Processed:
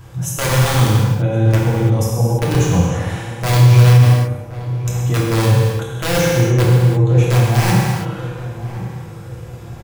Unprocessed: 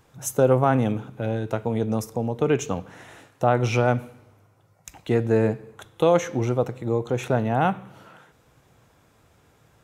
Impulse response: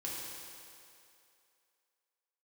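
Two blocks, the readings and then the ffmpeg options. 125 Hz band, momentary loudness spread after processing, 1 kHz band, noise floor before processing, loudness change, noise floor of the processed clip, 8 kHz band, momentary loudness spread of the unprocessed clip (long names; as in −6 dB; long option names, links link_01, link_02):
+16.0 dB, 16 LU, +3.5 dB, −60 dBFS, +9.0 dB, −33 dBFS, +11.5 dB, 9 LU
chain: -filter_complex "[0:a]bandreject=frequency=150.5:width_type=h:width=4,bandreject=frequency=301:width_type=h:width=4,bandreject=frequency=451.5:width_type=h:width=4,bandreject=frequency=602:width_type=h:width=4,bandreject=frequency=752.5:width_type=h:width=4,bandreject=frequency=903:width_type=h:width=4,bandreject=frequency=1053.5:width_type=h:width=4,bandreject=frequency=1204:width_type=h:width=4,bandreject=frequency=1354.5:width_type=h:width=4,bandreject=frequency=1505:width_type=h:width=4,bandreject=frequency=1655.5:width_type=h:width=4,bandreject=frequency=1806:width_type=h:width=4,bandreject=frequency=1956.5:width_type=h:width=4,bandreject=frequency=2107:width_type=h:width=4,bandreject=frequency=2257.5:width_type=h:width=4,bandreject=frequency=2408:width_type=h:width=4,bandreject=frequency=2558.5:width_type=h:width=4,bandreject=frequency=2709:width_type=h:width=4,bandreject=frequency=2859.5:width_type=h:width=4,bandreject=frequency=3010:width_type=h:width=4,bandreject=frequency=3160.5:width_type=h:width=4,aeval=exprs='(mod(3.98*val(0)+1,2)-1)/3.98':channel_layout=same,areverse,acompressor=threshold=-33dB:ratio=6,areverse,lowshelf=frequency=200:width_type=q:width=1.5:gain=8.5,asplit=2[link_01][link_02];[link_02]adelay=1072,lowpass=frequency=1200:poles=1,volume=-13.5dB,asplit=2[link_03][link_04];[link_04]adelay=1072,lowpass=frequency=1200:poles=1,volume=0.46,asplit=2[link_05][link_06];[link_06]adelay=1072,lowpass=frequency=1200:poles=1,volume=0.46,asplit=2[link_07][link_08];[link_08]adelay=1072,lowpass=frequency=1200:poles=1,volume=0.46[link_09];[link_01][link_03][link_05][link_07][link_09]amix=inputs=5:normalize=0[link_10];[1:a]atrim=start_sample=2205,afade=type=out:start_time=0.4:duration=0.01,atrim=end_sample=18081[link_11];[link_10][link_11]afir=irnorm=-1:irlink=0,alimiter=level_in=17dB:limit=-1dB:release=50:level=0:latency=1,volume=-1dB"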